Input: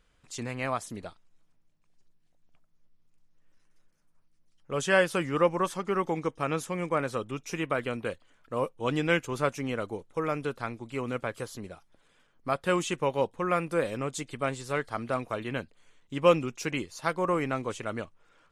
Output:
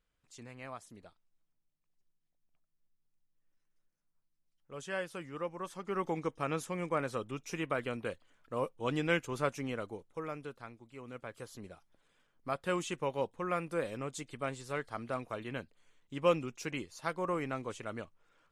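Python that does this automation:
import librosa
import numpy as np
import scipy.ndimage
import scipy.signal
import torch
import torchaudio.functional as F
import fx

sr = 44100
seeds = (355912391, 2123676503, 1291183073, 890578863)

y = fx.gain(x, sr, db=fx.line((5.56, -14.5), (6.06, -5.0), (9.61, -5.0), (10.95, -16.0), (11.64, -7.0)))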